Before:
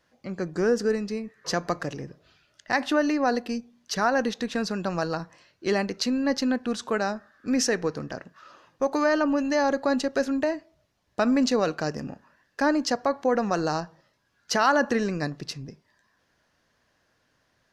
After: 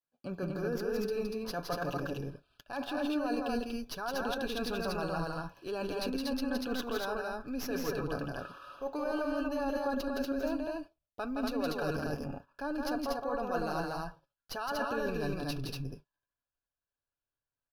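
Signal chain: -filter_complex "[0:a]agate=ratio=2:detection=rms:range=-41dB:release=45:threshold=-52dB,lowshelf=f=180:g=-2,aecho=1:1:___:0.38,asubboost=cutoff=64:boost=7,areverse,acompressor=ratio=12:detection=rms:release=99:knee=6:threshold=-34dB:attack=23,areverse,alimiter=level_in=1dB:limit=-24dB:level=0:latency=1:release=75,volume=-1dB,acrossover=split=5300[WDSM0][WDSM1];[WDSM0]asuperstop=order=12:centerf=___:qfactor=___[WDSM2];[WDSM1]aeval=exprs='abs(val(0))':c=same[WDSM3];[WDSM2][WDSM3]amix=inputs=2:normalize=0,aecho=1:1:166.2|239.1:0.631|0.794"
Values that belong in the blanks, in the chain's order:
7.1, 2000, 3.4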